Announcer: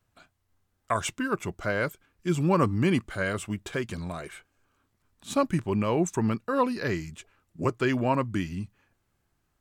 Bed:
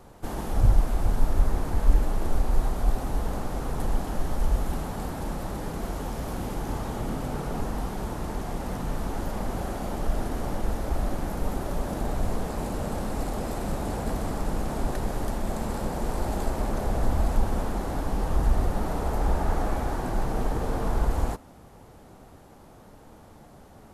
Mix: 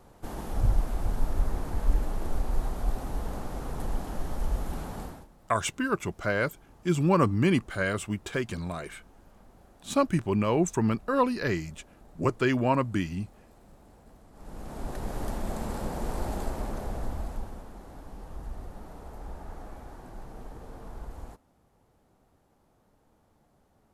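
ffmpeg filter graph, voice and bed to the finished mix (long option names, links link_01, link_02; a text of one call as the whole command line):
ffmpeg -i stem1.wav -i stem2.wav -filter_complex "[0:a]adelay=4600,volume=0.5dB[link_01];[1:a]volume=17dB,afade=type=out:start_time=4.99:duration=0.28:silence=0.0944061,afade=type=in:start_time=14.32:duration=0.95:silence=0.0794328,afade=type=out:start_time=16.23:duration=1.4:silence=0.223872[link_02];[link_01][link_02]amix=inputs=2:normalize=0" out.wav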